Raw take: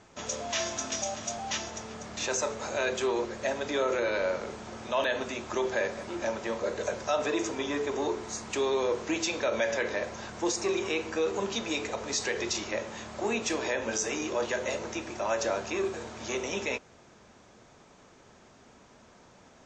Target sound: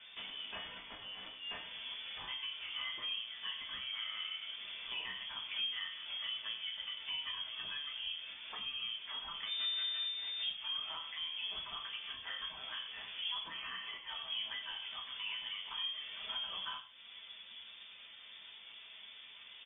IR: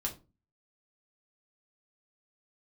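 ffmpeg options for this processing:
-filter_complex "[0:a]asettb=1/sr,asplit=3[s0][s1][s2];[s0]atrim=end=0.654[s3];[s1]atrim=start=0.65:end=1.35,asetpts=PTS-STARTPTS,afade=t=in:d=0.004:c=qsin,afade=t=out:st=0.696:d=0.004:c=qsin,highshelf=f=2300:g=10[s4];[s2]atrim=start=1.346[s5];[s3][s4]acrossfade=d=0.004:c1=hsin:c2=qsin[s6];[s6][s5]acrossfade=d=0.004:c1=qsin:c2=hsin,asettb=1/sr,asplit=3[s7][s8][s9];[s7]atrim=end=13.434[s10];[s8]atrim=start=13.43:end=14.08,asetpts=PTS-STARTPTS,afade=t=in:d=0.004:c=qsin,afade=t=out:st=0.646:d=0.004:c=qsin,highpass=f=740:p=1[s11];[s9]atrim=start=14.076[s12];[s10][s11]acrossfade=d=0.004:c1=hsin:c2=qsin[s13];[s13][s12]acrossfade=d=0.004:c1=qsin:c2=hsin,acompressor=threshold=0.00501:ratio=3,flanger=delay=0.9:depth=7.4:regen=71:speed=0.13:shape=triangular,asettb=1/sr,asplit=3[s14][s15][s16];[s14]atrim=end=9.454[s17];[s15]atrim=start=9.45:end=10.39,asetpts=PTS-STARTPTS,afade=t=in:d=0.004:c=qsin,afade=t=out:st=0.936:d=0.004:c=qsin,aeval=exprs='max(val(0),0)':c=same[s18];[s16]atrim=start=10.386[s19];[s17][s18]acrossfade=d=0.004:c1=hsin:c2=qsin[s20];[s20][s19]acrossfade=d=0.004:c1=qsin:c2=hsin,aecho=1:1:94|98:0.141|0.126[s21];[1:a]atrim=start_sample=2205[s22];[s21][s22]afir=irnorm=-1:irlink=0,lowpass=f=3100:t=q:w=0.5098,lowpass=f=3100:t=q:w=0.6013,lowpass=f=3100:t=q:w=0.9,lowpass=f=3100:t=q:w=2.563,afreqshift=-3600,volume=1.58"

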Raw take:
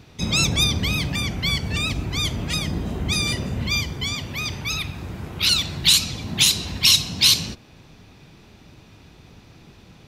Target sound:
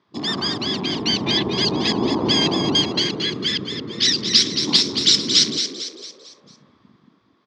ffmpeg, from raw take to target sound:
-filter_complex "[0:a]afwtdn=0.0316,asetrate=59535,aresample=44100,highpass=270,equalizer=f=360:t=q:w=4:g=3,equalizer=f=520:t=q:w=4:g=-9,equalizer=f=1100:t=q:w=4:g=10,equalizer=f=1900:t=q:w=4:g=3,equalizer=f=2800:t=q:w=4:g=-5,lowpass=f=4400:w=0.5412,lowpass=f=4400:w=1.3066,dynaudnorm=f=180:g=11:m=2.99,asplit=2[s0][s1];[s1]asplit=5[s2][s3][s4][s5][s6];[s2]adelay=225,afreqshift=50,volume=0.398[s7];[s3]adelay=450,afreqshift=100,volume=0.176[s8];[s4]adelay=675,afreqshift=150,volume=0.0767[s9];[s5]adelay=900,afreqshift=200,volume=0.0339[s10];[s6]adelay=1125,afreqshift=250,volume=0.015[s11];[s7][s8][s9][s10][s11]amix=inputs=5:normalize=0[s12];[s0][s12]amix=inputs=2:normalize=0,volume=1.12"

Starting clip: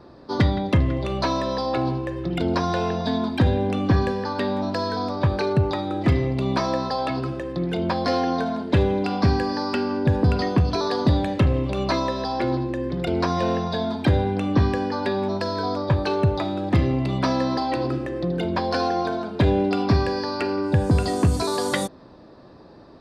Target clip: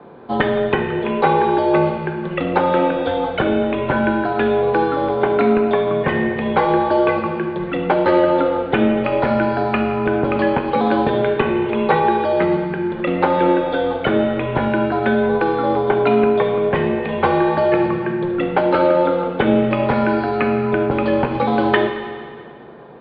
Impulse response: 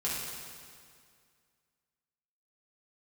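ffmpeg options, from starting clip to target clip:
-filter_complex "[0:a]aemphasis=mode=reproduction:type=bsi,highpass=f=480:t=q:w=0.5412,highpass=f=480:t=q:w=1.307,lowpass=f=3200:t=q:w=0.5176,lowpass=f=3200:t=q:w=0.7071,lowpass=f=3200:t=q:w=1.932,afreqshift=-170,asplit=2[s0][s1];[1:a]atrim=start_sample=2205,highshelf=f=4900:g=9.5[s2];[s1][s2]afir=irnorm=-1:irlink=0,volume=0.376[s3];[s0][s3]amix=inputs=2:normalize=0,volume=2.37"

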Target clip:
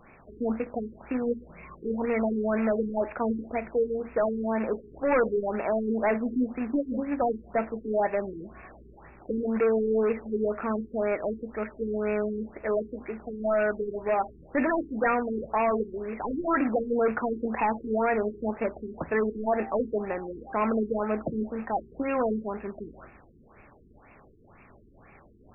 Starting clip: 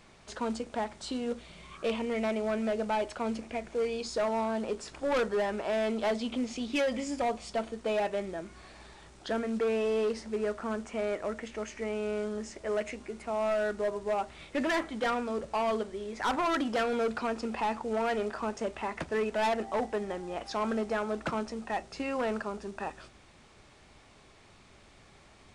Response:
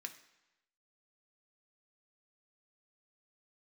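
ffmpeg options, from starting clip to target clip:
-filter_complex "[0:a]acrusher=bits=2:mode=log:mix=0:aa=0.000001,asplit=2[s0][s1];[1:a]atrim=start_sample=2205,lowshelf=f=69:g=-6[s2];[s1][s2]afir=irnorm=-1:irlink=0,volume=0.75[s3];[s0][s3]amix=inputs=2:normalize=0,afftfilt=real='re*lt(b*sr/1024,430*pow(2800/430,0.5+0.5*sin(2*PI*2*pts/sr)))':imag='im*lt(b*sr/1024,430*pow(2800/430,0.5+0.5*sin(2*PI*2*pts/sr)))':win_size=1024:overlap=0.75,volume=1.33"

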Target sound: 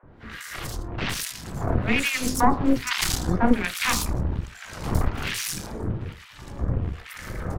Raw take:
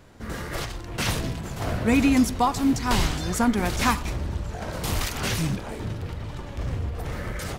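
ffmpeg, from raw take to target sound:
-filter_complex "[0:a]bandreject=f=51.5:t=h:w=4,bandreject=f=103:t=h:w=4,bandreject=f=154.5:t=h:w=4,bandreject=f=206:t=h:w=4,bandreject=f=257.5:t=h:w=4,bandreject=f=309:t=h:w=4,bandreject=f=360.5:t=h:w=4,bandreject=f=412:t=h:w=4,bandreject=f=463.5:t=h:w=4,bandreject=f=515:t=h:w=4,bandreject=f=566.5:t=h:w=4,bandreject=f=618:t=h:w=4,bandreject=f=669.5:t=h:w=4,bandreject=f=721:t=h:w=4,bandreject=f=772.5:t=h:w=4,bandreject=f=824:t=h:w=4,bandreject=f=875.5:t=h:w=4,bandreject=f=927:t=h:w=4,bandreject=f=978.5:t=h:w=4,bandreject=f=1030:t=h:w=4,bandreject=f=1081.5:t=h:w=4,bandreject=f=1133:t=h:w=4,bandreject=f=1184.5:t=h:w=4,bandreject=f=1236:t=h:w=4,bandreject=f=1287.5:t=h:w=4,bandreject=f=1339:t=h:w=4,bandreject=f=1390.5:t=h:w=4,bandreject=f=1442:t=h:w=4,aeval=exprs='0.355*(cos(1*acos(clip(val(0)/0.355,-1,1)))-cos(1*PI/2))+0.126*(cos(4*acos(clip(val(0)/0.355,-1,1)))-cos(4*PI/2))':c=same,acrossover=split=1400[s0][s1];[s0]aeval=exprs='val(0)*(1-1/2+1/2*cos(2*PI*1.2*n/s))':c=same[s2];[s1]aeval=exprs='val(0)*(1-1/2-1/2*cos(2*PI*1.2*n/s))':c=same[s3];[s2][s3]amix=inputs=2:normalize=0,acrossover=split=630|4000[s4][s5][s6];[s4]adelay=30[s7];[s6]adelay=110[s8];[s7][s5][s8]amix=inputs=3:normalize=0,volume=1.68"

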